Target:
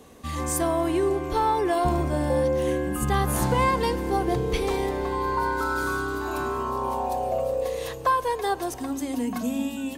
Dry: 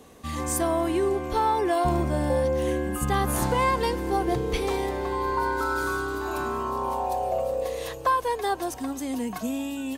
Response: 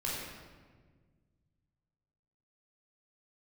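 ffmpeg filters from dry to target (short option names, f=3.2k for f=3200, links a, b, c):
-filter_complex "[0:a]asplit=2[a][b];[b]equalizer=f=230:t=o:w=0.77:g=11[c];[1:a]atrim=start_sample=2205,lowshelf=f=390:g=8.5[d];[c][d]afir=irnorm=-1:irlink=0,volume=-24dB[e];[a][e]amix=inputs=2:normalize=0"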